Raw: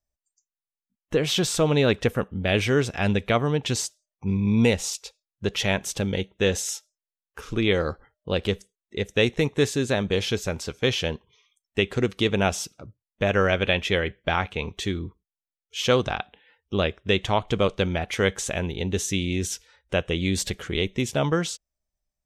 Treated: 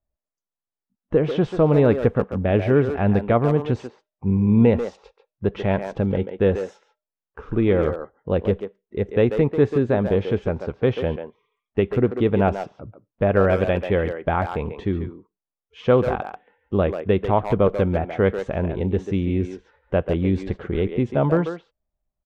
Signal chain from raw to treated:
one scale factor per block 7 bits
low-pass filter 1,100 Hz 12 dB per octave
far-end echo of a speakerphone 140 ms, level −7 dB
level +4.5 dB

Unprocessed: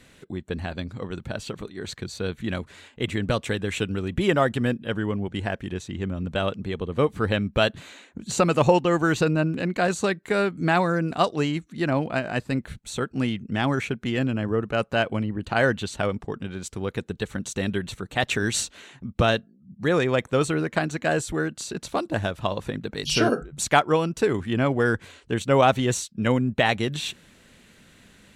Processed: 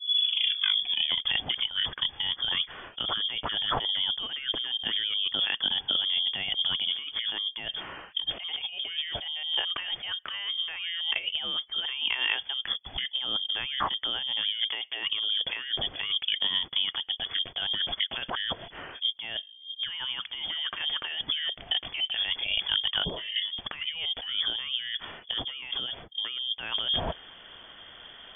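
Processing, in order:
turntable start at the beginning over 1.23 s
compressor whose output falls as the input rises −31 dBFS, ratio −1
voice inversion scrambler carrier 3,400 Hz

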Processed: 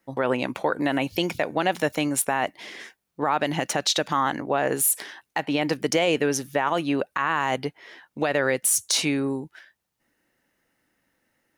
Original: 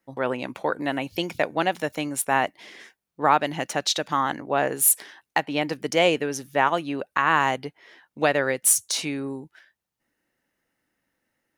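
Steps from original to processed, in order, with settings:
brickwall limiter −16.5 dBFS, peak gain reduction 11 dB
level +5 dB

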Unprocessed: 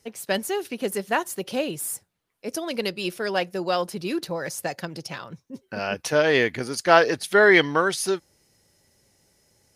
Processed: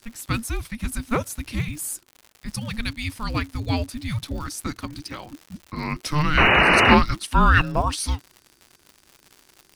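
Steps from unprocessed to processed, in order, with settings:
sound drawn into the spectrogram noise, 0:06.37–0:06.95, 500–3,400 Hz −16 dBFS
frequency shifter −450 Hz
surface crackle 150 per second −34 dBFS

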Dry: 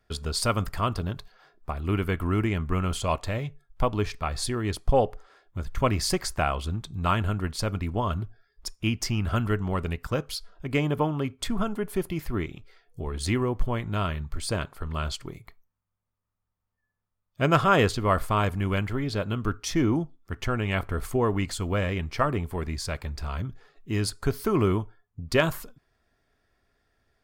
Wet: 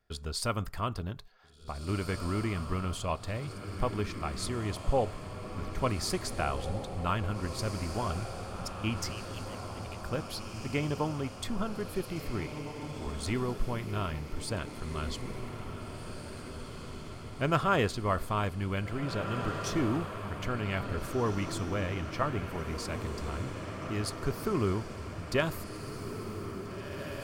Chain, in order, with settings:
0:09.10–0:10.03: Butterworth high-pass 2,400 Hz
feedback delay with all-pass diffusion 1,806 ms, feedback 61%, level −7.5 dB
level −6.5 dB

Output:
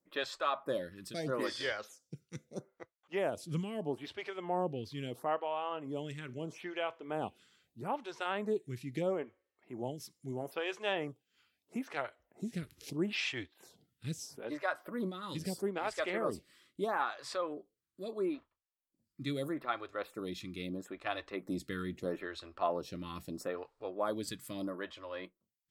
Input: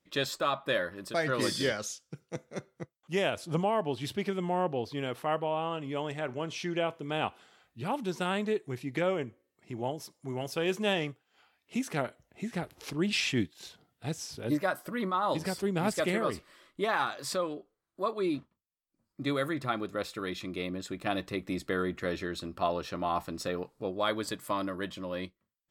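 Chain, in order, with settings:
phaser with staggered stages 0.77 Hz
level −2.5 dB

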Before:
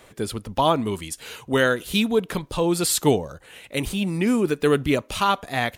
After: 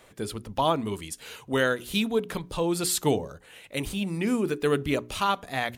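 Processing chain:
mains-hum notches 60/120/180/240/300/360/420 Hz
level −4.5 dB

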